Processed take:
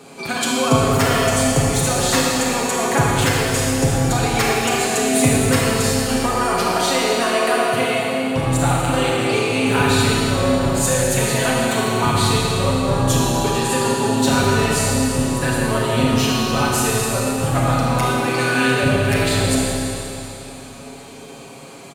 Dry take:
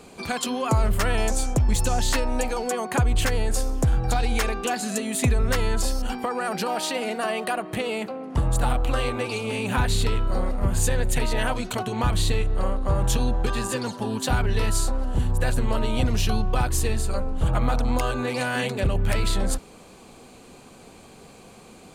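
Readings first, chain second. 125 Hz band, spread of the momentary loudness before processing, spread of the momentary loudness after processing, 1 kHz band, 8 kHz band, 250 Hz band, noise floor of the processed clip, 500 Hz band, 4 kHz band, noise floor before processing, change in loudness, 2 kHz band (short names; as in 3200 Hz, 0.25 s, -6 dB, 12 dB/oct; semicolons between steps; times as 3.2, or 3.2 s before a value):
+5.5 dB, 5 LU, 4 LU, +8.5 dB, +10.0 dB, +10.0 dB, -37 dBFS, +9.5 dB, +9.5 dB, -48 dBFS, +7.5 dB, +9.5 dB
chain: HPF 110 Hz 12 dB/oct; comb 7.3 ms, depth 72%; Schroeder reverb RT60 3.1 s, combs from 27 ms, DRR -4 dB; gain +2.5 dB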